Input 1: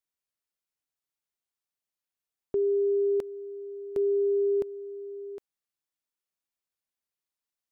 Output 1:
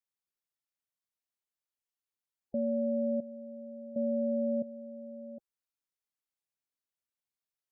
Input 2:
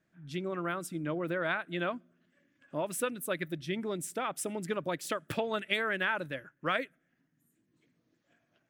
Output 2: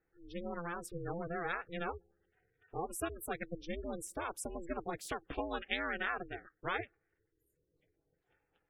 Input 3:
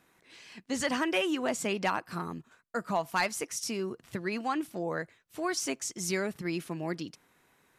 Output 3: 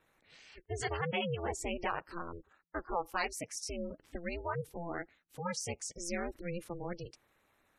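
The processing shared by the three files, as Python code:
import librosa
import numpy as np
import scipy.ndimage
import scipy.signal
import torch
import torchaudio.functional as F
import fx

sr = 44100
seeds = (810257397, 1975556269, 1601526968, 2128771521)

y = fx.spec_gate(x, sr, threshold_db=-20, keep='strong')
y = y * np.sin(2.0 * np.pi * 170.0 * np.arange(len(y)) / sr)
y = y * librosa.db_to_amplitude(-2.5)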